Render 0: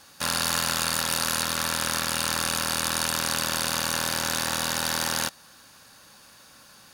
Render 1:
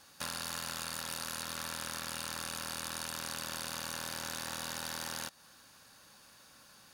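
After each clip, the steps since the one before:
downward compressor 3 to 1, threshold −30 dBFS, peak gain reduction 7.5 dB
level −7 dB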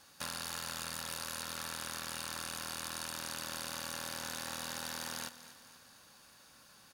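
repeating echo 243 ms, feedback 52%, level −14.5 dB
level −1.5 dB

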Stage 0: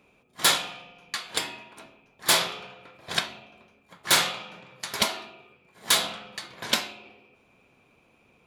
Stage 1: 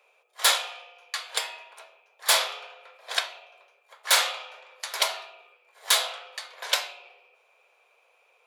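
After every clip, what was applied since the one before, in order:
Butterworth high-pass 470 Hz 48 dB per octave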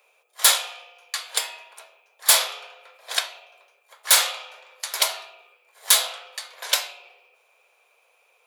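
high-shelf EQ 6,600 Hz +11.5 dB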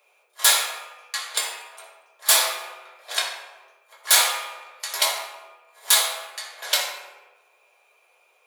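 convolution reverb RT60 1.1 s, pre-delay 4 ms, DRR −2 dB
level −2.5 dB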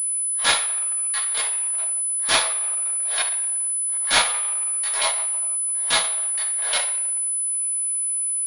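transient designer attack −8 dB, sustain −12 dB
switching amplifier with a slow clock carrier 10,000 Hz
level +4.5 dB

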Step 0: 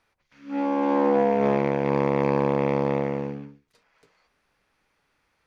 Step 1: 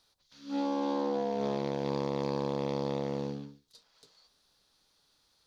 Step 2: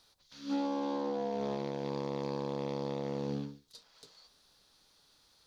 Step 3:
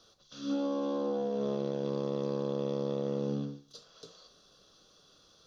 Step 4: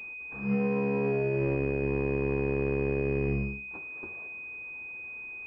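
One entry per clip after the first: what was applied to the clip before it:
downward compressor 6 to 1, threshold −23 dBFS, peak gain reduction 7.5 dB; high shelf with overshoot 3,000 Hz +9.5 dB, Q 3; level −4 dB
brickwall limiter −29.5 dBFS, peak gain reduction 9 dB; level +4 dB
downward compressor 2 to 1, threshold −41 dBFS, peak gain reduction 6.5 dB; convolution reverb RT60 0.55 s, pre-delay 3 ms, DRR 11.5 dB; level −3 dB
frequency shifter −78 Hz; switching amplifier with a slow clock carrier 2,500 Hz; level +4.5 dB

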